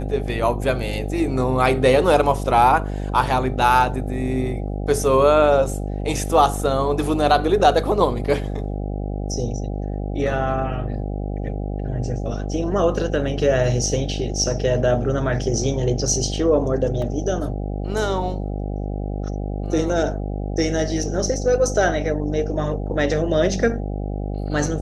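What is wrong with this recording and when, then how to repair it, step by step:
buzz 50 Hz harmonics 16 -26 dBFS
17.02 s: dropout 2.7 ms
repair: de-hum 50 Hz, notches 16; interpolate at 17.02 s, 2.7 ms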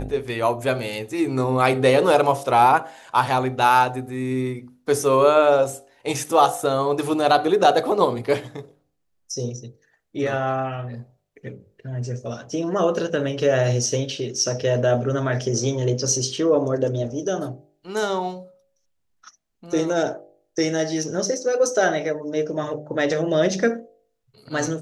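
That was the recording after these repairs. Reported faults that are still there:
nothing left

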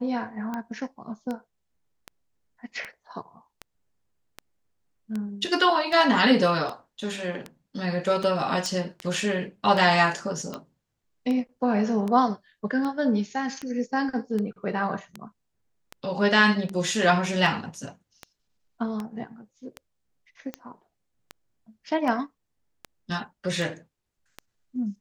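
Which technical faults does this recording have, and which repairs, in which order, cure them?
tick 78 rpm -19 dBFS
8.66 s: pop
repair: de-click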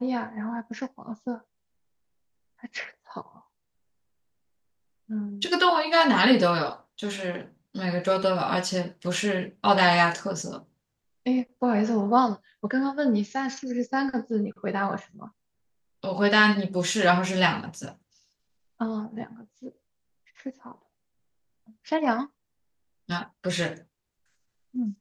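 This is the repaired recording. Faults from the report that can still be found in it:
nothing left

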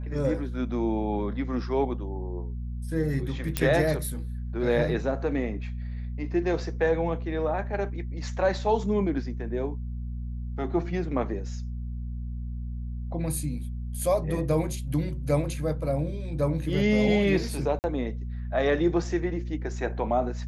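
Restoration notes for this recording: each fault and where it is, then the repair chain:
hum 60 Hz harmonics 4 -33 dBFS
3.57 s: pop -9 dBFS
17.79–17.84 s: dropout 49 ms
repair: de-click; de-hum 60 Hz, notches 4; interpolate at 17.79 s, 49 ms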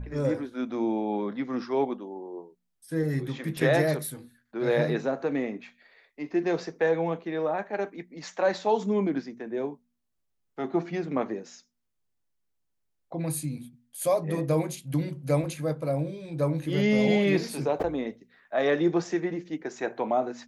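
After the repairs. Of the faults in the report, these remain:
nothing left

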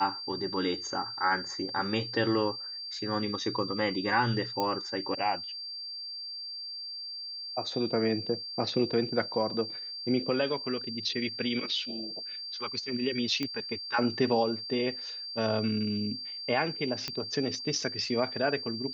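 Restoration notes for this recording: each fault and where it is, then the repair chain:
whine 4.7 kHz -37 dBFS
4.60 s: pop -16 dBFS
13.43 s: pop -18 dBFS
17.08 s: pop -17 dBFS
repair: de-click; band-stop 4.7 kHz, Q 30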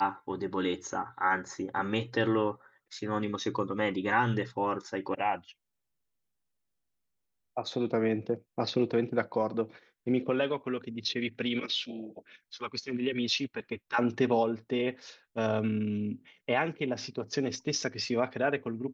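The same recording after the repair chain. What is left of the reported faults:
17.08 s: pop

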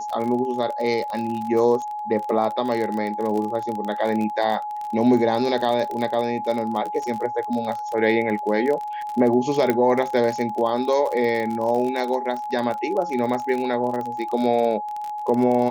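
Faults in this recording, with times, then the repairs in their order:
crackle 37 per s -26 dBFS
whine 840 Hz -27 dBFS
9.70 s: pop -8 dBFS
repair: de-click; band-stop 840 Hz, Q 30

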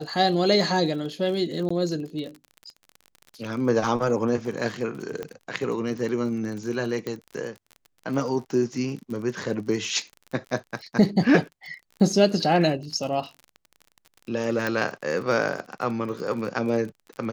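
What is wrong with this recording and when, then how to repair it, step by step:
crackle 43 per s -34 dBFS
1.69–1.71 s: dropout 15 ms
5.23 s: pop -19 dBFS
7.07 s: pop -17 dBFS
14.67 s: pop -12 dBFS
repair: de-click; interpolate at 1.69 s, 15 ms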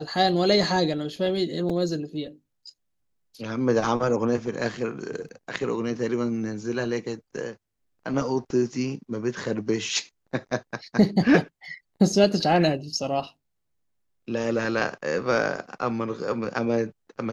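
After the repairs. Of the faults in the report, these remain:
5.23 s: pop

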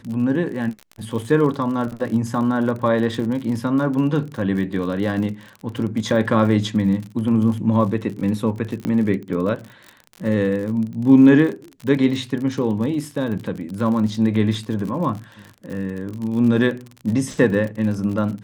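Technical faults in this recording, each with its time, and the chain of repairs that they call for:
crackle 47 per s -28 dBFS
8.85 s: pop -12 dBFS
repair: de-click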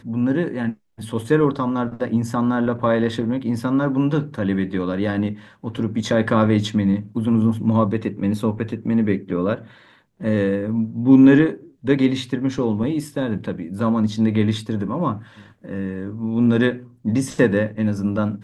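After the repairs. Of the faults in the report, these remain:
nothing left

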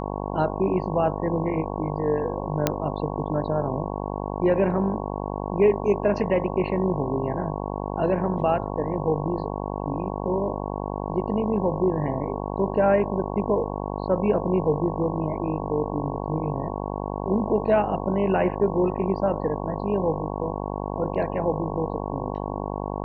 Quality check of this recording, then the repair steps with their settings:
buzz 50 Hz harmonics 22 -30 dBFS
2.67 s: pop -5 dBFS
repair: de-click; de-hum 50 Hz, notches 22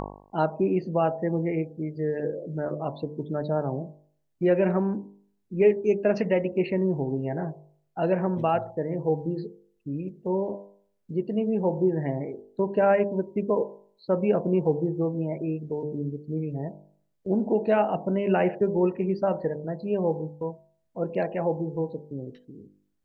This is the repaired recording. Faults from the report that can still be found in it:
2.67 s: pop

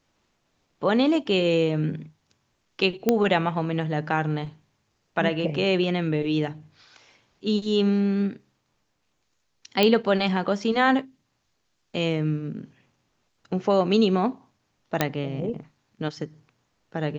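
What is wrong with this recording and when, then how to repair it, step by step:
3.09 s: pop -7 dBFS
9.83 s: pop -7 dBFS
15.01 s: pop -5 dBFS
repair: de-click

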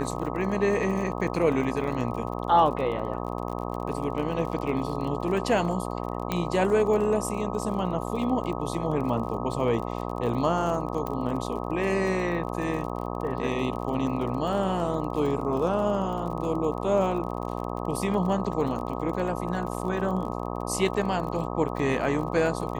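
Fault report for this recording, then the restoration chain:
buzz 60 Hz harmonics 21 -32 dBFS
crackle 38 per s -34 dBFS
6.32 s: pop -13 dBFS
11.07 s: pop -18 dBFS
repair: de-click; de-hum 60 Hz, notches 21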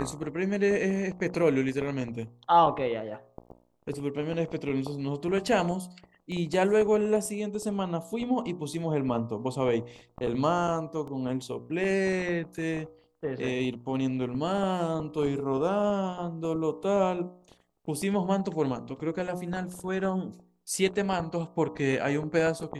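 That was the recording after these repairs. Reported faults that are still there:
6.32 s: pop
11.07 s: pop

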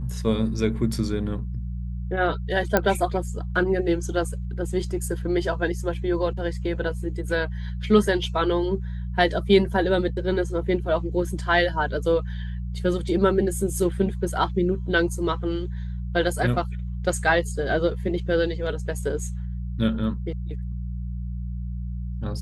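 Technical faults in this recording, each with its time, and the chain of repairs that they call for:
hum 60 Hz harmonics 3 -30 dBFS
2.77 s: pop -5 dBFS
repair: de-click; de-hum 60 Hz, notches 3

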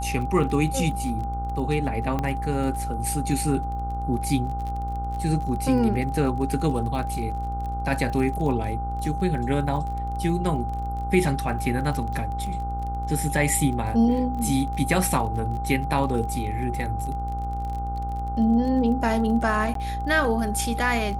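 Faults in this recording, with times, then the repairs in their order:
buzz 60 Hz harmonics 25 -30 dBFS
crackle 29 per s -32 dBFS
whine 800 Hz -30 dBFS
2.19 s: pop -14 dBFS
19.74–19.75 s: dropout 13 ms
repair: de-click; de-hum 60 Hz, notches 25; band-stop 800 Hz, Q 30; interpolate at 19.74 s, 13 ms

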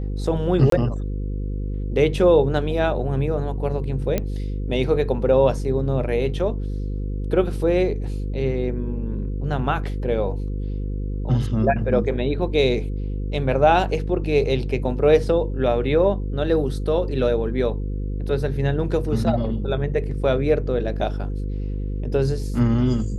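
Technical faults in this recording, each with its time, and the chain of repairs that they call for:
buzz 50 Hz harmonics 10 -26 dBFS
0.70–0.72 s: dropout 23 ms
4.18 s: pop -9 dBFS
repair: de-click; de-hum 50 Hz, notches 10; interpolate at 0.70 s, 23 ms

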